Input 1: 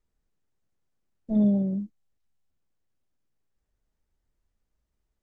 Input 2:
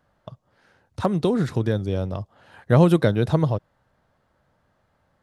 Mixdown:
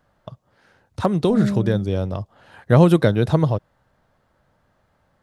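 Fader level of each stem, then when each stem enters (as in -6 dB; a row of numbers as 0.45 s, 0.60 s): -1.0 dB, +2.5 dB; 0.00 s, 0.00 s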